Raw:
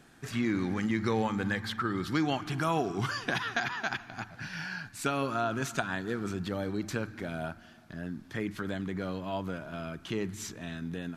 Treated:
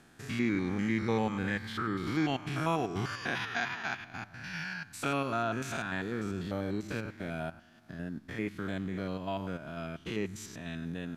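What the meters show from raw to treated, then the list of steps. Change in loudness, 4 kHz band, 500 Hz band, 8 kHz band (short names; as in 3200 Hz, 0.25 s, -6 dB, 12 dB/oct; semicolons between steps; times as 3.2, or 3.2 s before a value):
-1.5 dB, -2.5 dB, -1.5 dB, -4.0 dB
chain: stepped spectrum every 0.1 s; dynamic EQ 2300 Hz, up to +5 dB, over -53 dBFS, Q 3.2; transient shaper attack +1 dB, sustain -5 dB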